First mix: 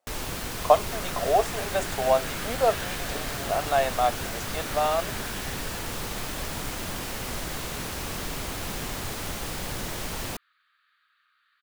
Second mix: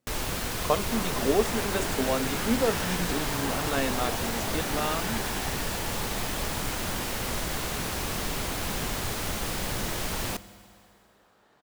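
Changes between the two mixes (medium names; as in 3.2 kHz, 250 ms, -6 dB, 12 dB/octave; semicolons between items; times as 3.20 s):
speech: remove resonant high-pass 680 Hz, resonance Q 4.4; second sound: remove Chebyshev band-pass 1.2–4.6 kHz, order 5; reverb: on, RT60 2.7 s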